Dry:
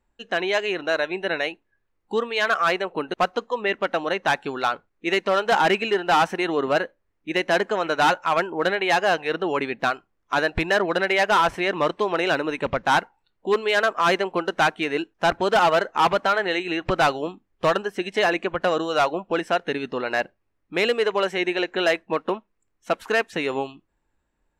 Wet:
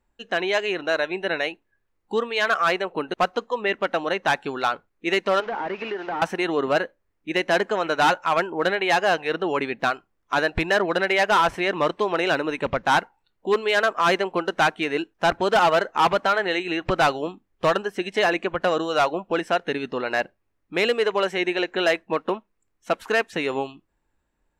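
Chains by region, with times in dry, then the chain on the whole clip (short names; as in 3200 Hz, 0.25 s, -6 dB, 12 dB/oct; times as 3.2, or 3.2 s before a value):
5.4–6.22 delta modulation 32 kbps, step -31 dBFS + three-band isolator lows -14 dB, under 200 Hz, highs -16 dB, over 2800 Hz + compressor 4:1, threshold -26 dBFS
whole clip: dry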